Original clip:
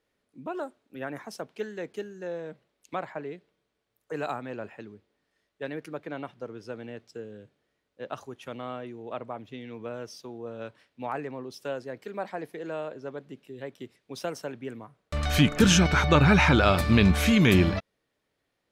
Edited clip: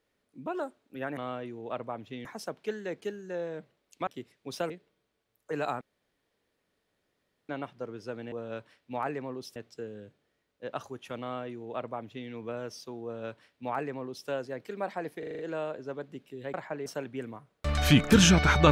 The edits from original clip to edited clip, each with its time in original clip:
2.99–3.31 swap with 13.71–14.34
4.42–6.1 room tone
8.58–9.66 copy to 1.17
10.41–11.65 copy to 6.93
12.56 stutter 0.04 s, 6 plays

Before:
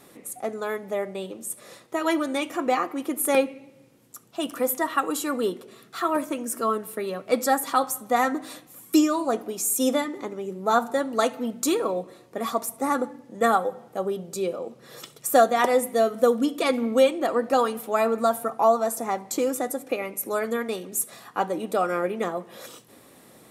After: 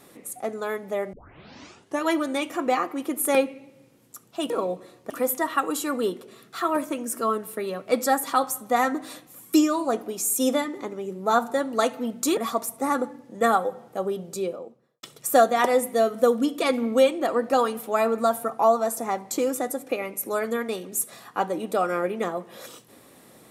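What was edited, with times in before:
1.13 tape start 0.91 s
11.77–12.37 move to 4.5
14.28–15.03 studio fade out

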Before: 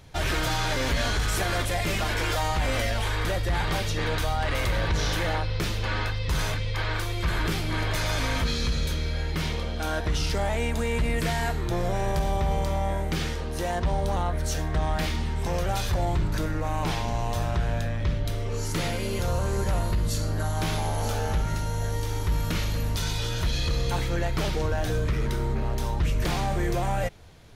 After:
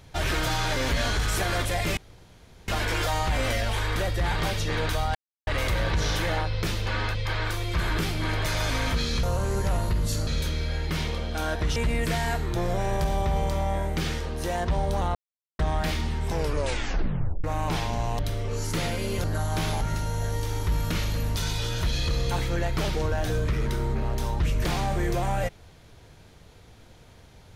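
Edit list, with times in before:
1.97 insert room tone 0.71 s
4.44 insert silence 0.32 s
6.12–6.64 cut
10.21–10.91 cut
14.3–14.74 mute
15.45 tape stop 1.14 s
17.34–18.2 cut
19.25–20.29 move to 8.72
20.86–21.41 cut

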